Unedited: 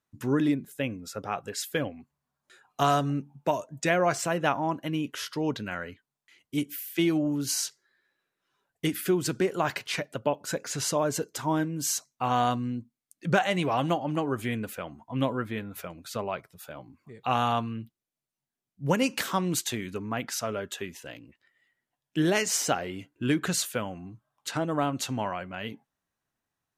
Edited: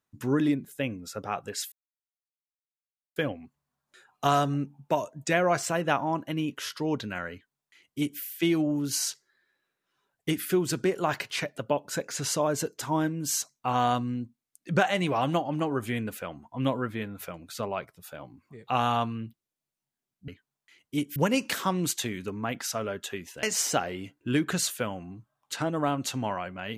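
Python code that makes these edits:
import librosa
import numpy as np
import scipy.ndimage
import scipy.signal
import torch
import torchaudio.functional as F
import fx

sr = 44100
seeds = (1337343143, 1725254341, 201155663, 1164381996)

y = fx.edit(x, sr, fx.insert_silence(at_s=1.72, length_s=1.44),
    fx.duplicate(start_s=5.88, length_s=0.88, to_s=18.84),
    fx.cut(start_s=21.11, length_s=1.27), tone=tone)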